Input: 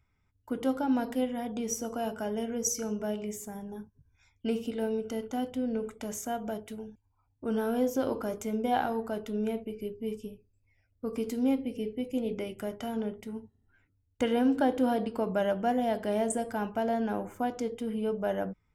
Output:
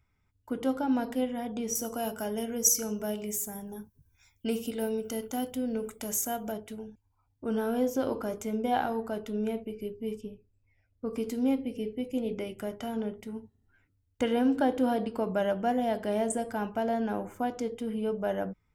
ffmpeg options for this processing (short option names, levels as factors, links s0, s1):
-filter_complex "[0:a]asettb=1/sr,asplit=3[s0][s1][s2];[s0]atrim=end=1.754[s3];[s1]atrim=start=1.75:end=6.52,asetpts=PTS-STARTPTS,afade=t=in:d=0.004:c=qsin,afade=t=out:st=4.766:d=0.004:c=qsin,aemphasis=mode=production:type=50fm[s4];[s2]atrim=start=6.516[s5];[s3][s4]acrossfade=d=0.004:c1=hsin:c2=qsin[s6];[s6][s5]acrossfade=d=0.004:c1=qsin:c2=hsin,asettb=1/sr,asplit=3[s7][s8][s9];[s7]atrim=end=10.214[s10];[s8]atrim=start=10.21:end=11.11,asetpts=PTS-STARTPTS,afade=t=in:d=0.004:c=qsin,afade=t=out:st=0.896:d=0.004:c=qsin,aemphasis=mode=reproduction:type=50fm[s11];[s9]atrim=start=11.106[s12];[s10][s11]acrossfade=d=0.004:c1=hsin:c2=qsin[s13];[s13][s12]acrossfade=d=0.004:c1=qsin:c2=hsin"